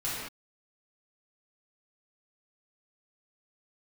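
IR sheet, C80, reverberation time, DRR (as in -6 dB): 0.5 dB, not exponential, -10.0 dB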